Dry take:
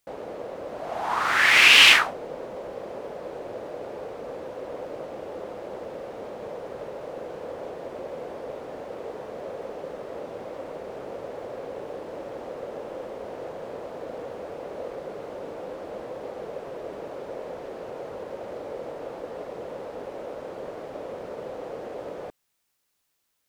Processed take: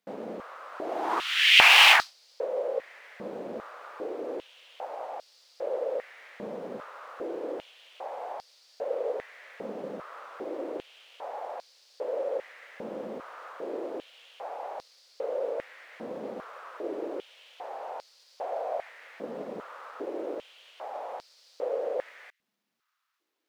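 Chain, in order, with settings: median filter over 5 samples; 18.37–18.89 frequency shift +180 Hz; stepped high-pass 2.5 Hz 210–4700 Hz; gain -3.5 dB

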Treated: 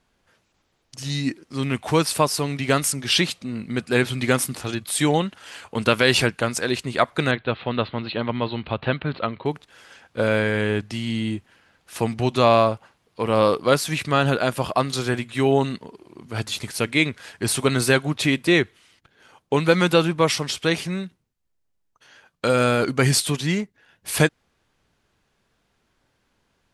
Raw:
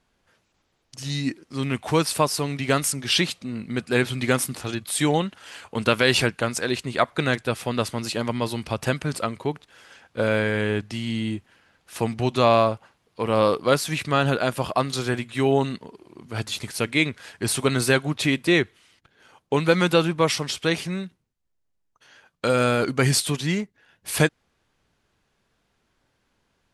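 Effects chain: 7.31–9.46 Chebyshev low-pass 4100 Hz, order 6; gain +1.5 dB

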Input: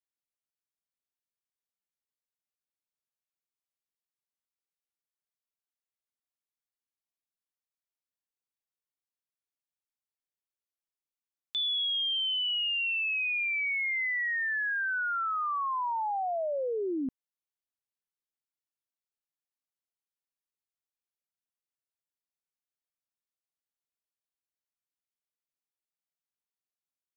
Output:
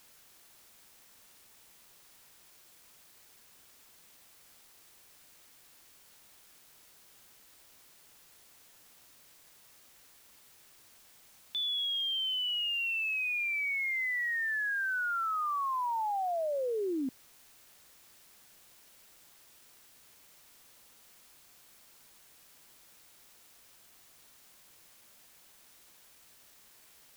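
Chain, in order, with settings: HPF 160 Hz 12 dB/oct; high shelf 3000 Hz -3.5 dB; in parallel at -7.5 dB: requantised 8-bit, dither triangular; on the sum: gain -4 dB

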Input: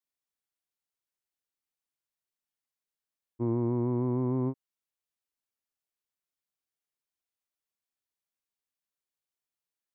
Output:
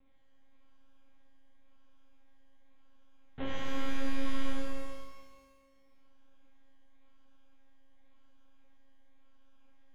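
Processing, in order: gate with hold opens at -28 dBFS; upward compressor, threshold -32 dBFS; limiter -31.5 dBFS, peak gain reduction 11 dB; half-wave rectifier; Gaussian blur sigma 8.2 samples; decimation with a swept rate 28×, swing 60% 0.93 Hz; monotone LPC vocoder at 8 kHz 270 Hz; shimmer reverb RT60 1.6 s, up +12 st, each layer -8 dB, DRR -7.5 dB; gain +6.5 dB

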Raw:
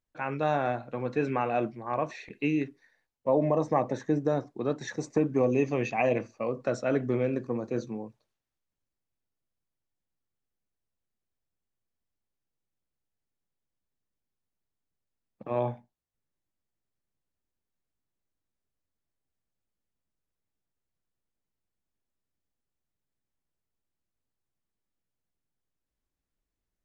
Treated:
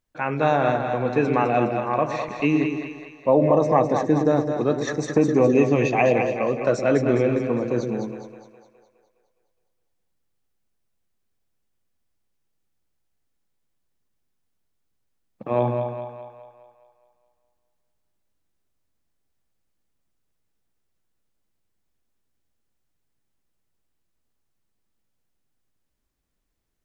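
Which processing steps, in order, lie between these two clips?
split-band echo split 520 Hz, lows 0.115 s, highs 0.207 s, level -6 dB; gain +7 dB

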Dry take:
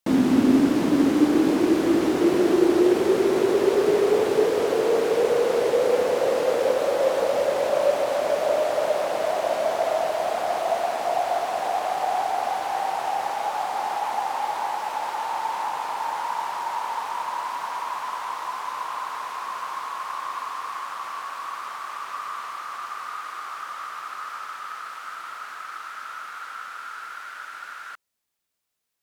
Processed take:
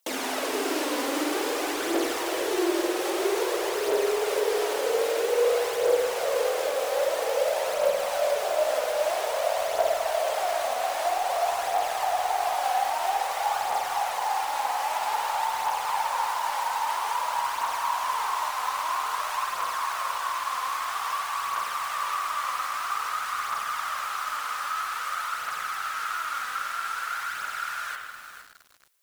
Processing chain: HPF 450 Hz 24 dB/oct; high shelf 3600 Hz +10 dB; compressor 2.5:1, threshold -30 dBFS, peak gain reduction 10 dB; short-mantissa float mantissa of 2-bit; phaser 0.51 Hz, delay 4.1 ms, feedback 53%; on a send at -1.5 dB: reverb RT60 1.1 s, pre-delay 50 ms; on the sum: lo-fi delay 0.464 s, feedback 35%, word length 7-bit, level -9 dB

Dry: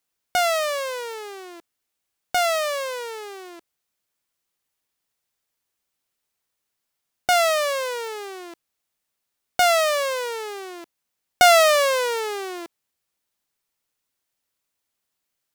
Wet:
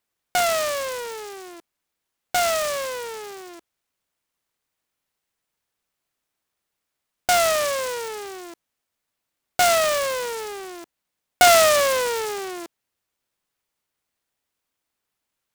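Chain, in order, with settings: noise-modulated delay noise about 5000 Hz, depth 0.053 ms

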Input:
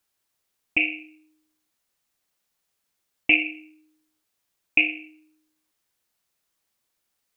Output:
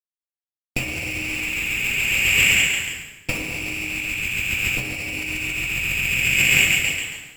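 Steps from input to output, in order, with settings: per-bin compression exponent 0.6; on a send: thin delay 0.138 s, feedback 83%, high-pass 1500 Hz, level -8 dB; on the sum: fuzz box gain 38 dB, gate -39 dBFS; gate with hold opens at -34 dBFS; plate-style reverb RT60 1.1 s, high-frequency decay 0.85×, DRR -8.5 dB; negative-ratio compressor -21 dBFS, ratio -1; tone controls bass +11 dB, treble -2 dB; gain -2.5 dB

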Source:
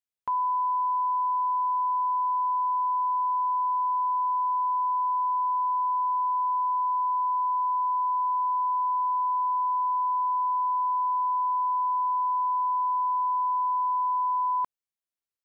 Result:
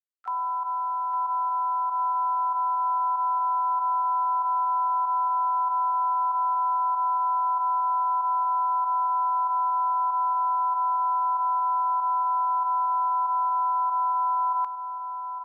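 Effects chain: requantised 12-bit, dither none; pump 95 bpm, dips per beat 1, -12 dB, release 65 ms; HPF 930 Hz 12 dB/oct; feedback echo 0.858 s, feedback 51%, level -11 dB; harmoniser -5 st -17 dB, +5 st -14 dB

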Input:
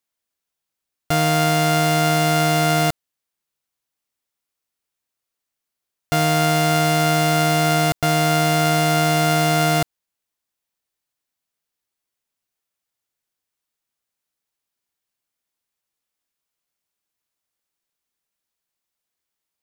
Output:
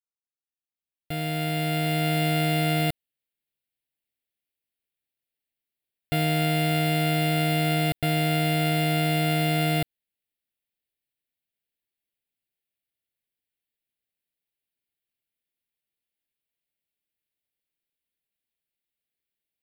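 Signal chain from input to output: opening faded in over 2.23 s; fixed phaser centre 2700 Hz, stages 4; gain -3.5 dB

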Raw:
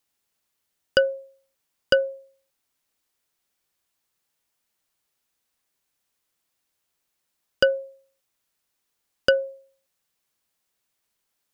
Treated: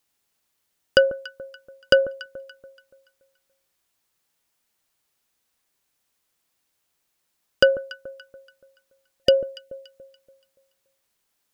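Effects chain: spectral gain 9.23–9.84, 710–1800 Hz -16 dB; echo with dull and thin repeats by turns 0.143 s, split 1100 Hz, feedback 60%, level -13 dB; gain +3 dB

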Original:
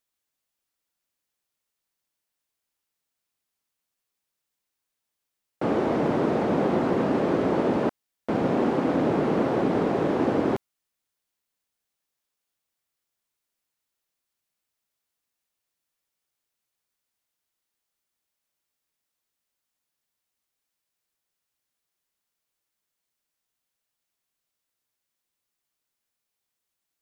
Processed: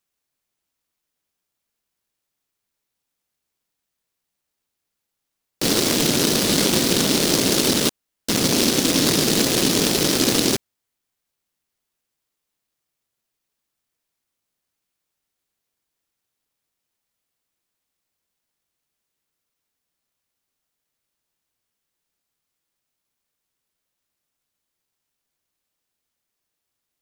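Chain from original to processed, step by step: noise-modulated delay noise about 4400 Hz, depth 0.34 ms; gain +4.5 dB

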